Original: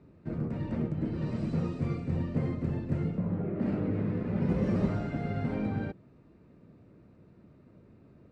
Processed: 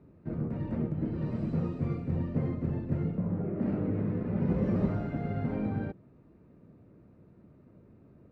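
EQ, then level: high shelf 2800 Hz -12 dB; 0.0 dB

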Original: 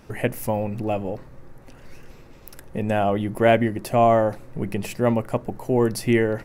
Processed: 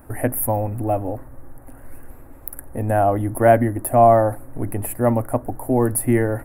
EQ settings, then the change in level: EQ curve 110 Hz 0 dB, 180 Hz -17 dB, 270 Hz +2 dB, 410 Hz -9 dB, 700 Hz 0 dB, 1000 Hz -4 dB, 1700 Hz -5 dB, 2800 Hz -20 dB, 5900 Hz -24 dB, 9900 Hz +7 dB; +6.0 dB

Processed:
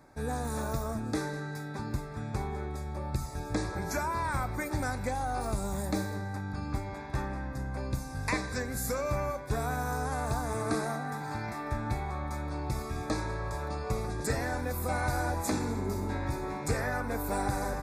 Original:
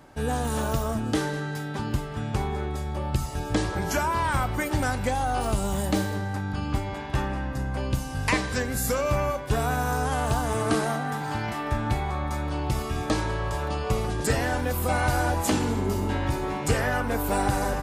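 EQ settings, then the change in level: Butterworth band-stop 3000 Hz, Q 2.9; -6.5 dB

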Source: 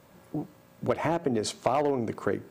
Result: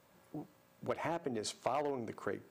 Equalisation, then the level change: low shelf 480 Hz -6 dB; -7.5 dB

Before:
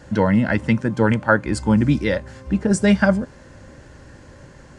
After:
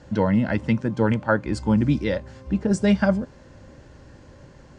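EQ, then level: LPF 6200 Hz 12 dB/oct; bell 1700 Hz -4.5 dB 0.92 oct; -3.0 dB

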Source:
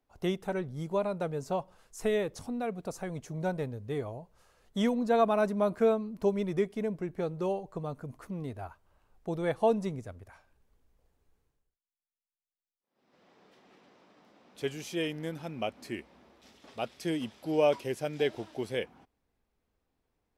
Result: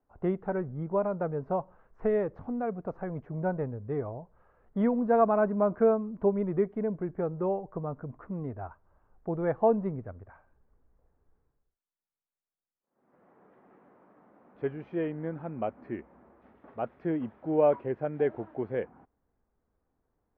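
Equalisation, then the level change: LPF 1600 Hz 24 dB/oct; +2.0 dB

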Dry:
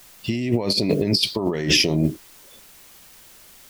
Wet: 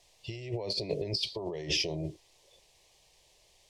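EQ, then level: LPF 5800 Hz 12 dB/oct; fixed phaser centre 580 Hz, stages 4; -9.0 dB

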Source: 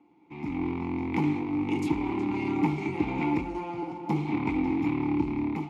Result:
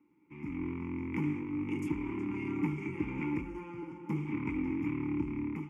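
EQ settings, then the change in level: fixed phaser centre 1700 Hz, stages 4; -4.5 dB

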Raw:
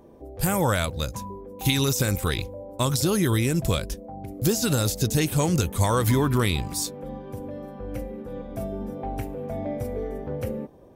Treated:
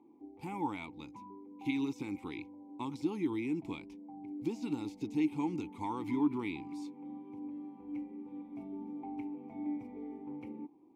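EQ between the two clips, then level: vowel filter u; low shelf 80 Hz -10 dB; high shelf 9900 Hz -4 dB; 0.0 dB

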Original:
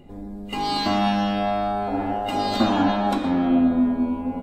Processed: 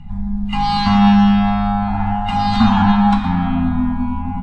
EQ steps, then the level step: elliptic band-stop 210–830 Hz, stop band 40 dB; air absorption 65 m; tilt -2 dB/oct; +9.0 dB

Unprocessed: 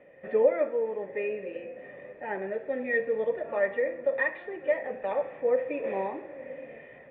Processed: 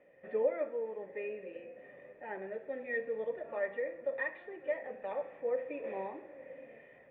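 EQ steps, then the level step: notches 50/100/150/200/250 Hz; notches 60/120 Hz; -8.5 dB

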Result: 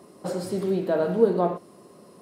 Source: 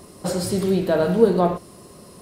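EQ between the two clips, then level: HPF 200 Hz 12 dB/oct; high shelf 2100 Hz -9.5 dB; -3.0 dB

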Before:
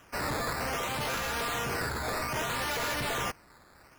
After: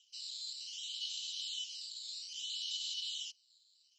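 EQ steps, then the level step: rippled Chebyshev high-pass 2900 Hz, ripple 9 dB; rippled Chebyshev low-pass 7600 Hz, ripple 3 dB; air absorption 56 m; +8.5 dB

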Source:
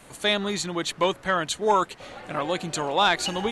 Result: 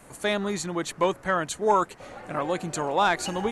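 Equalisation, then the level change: bell 3500 Hz -9 dB 1.1 oct; 0.0 dB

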